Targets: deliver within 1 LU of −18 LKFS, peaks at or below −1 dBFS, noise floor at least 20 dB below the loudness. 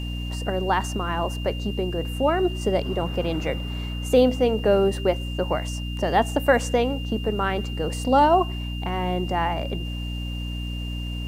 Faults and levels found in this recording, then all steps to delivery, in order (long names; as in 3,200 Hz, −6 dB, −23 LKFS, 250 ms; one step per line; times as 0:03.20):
mains hum 60 Hz; hum harmonics up to 300 Hz; level of the hum −27 dBFS; interfering tone 2,800 Hz; level of the tone −37 dBFS; integrated loudness −24.0 LKFS; sample peak −5.5 dBFS; target loudness −18.0 LKFS
→ hum removal 60 Hz, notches 5
notch filter 2,800 Hz, Q 30
level +6 dB
brickwall limiter −1 dBFS